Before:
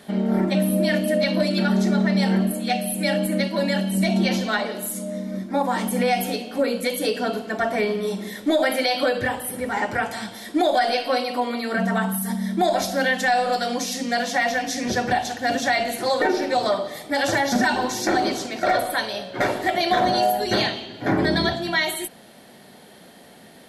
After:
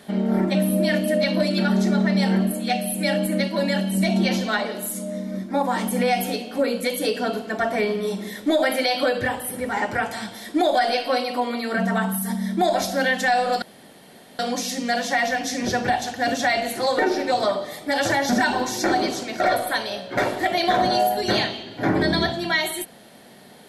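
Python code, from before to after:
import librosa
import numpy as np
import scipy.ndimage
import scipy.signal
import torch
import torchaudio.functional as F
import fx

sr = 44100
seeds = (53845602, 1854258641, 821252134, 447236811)

y = fx.edit(x, sr, fx.insert_room_tone(at_s=13.62, length_s=0.77), tone=tone)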